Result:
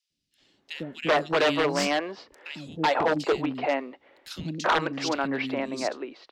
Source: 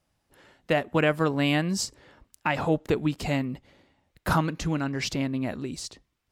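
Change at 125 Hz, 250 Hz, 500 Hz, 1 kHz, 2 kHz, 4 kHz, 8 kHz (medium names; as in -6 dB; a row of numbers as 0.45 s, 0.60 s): -9.5 dB, -3.0 dB, +2.5 dB, +4.0 dB, +2.0 dB, +2.5 dB, -3.0 dB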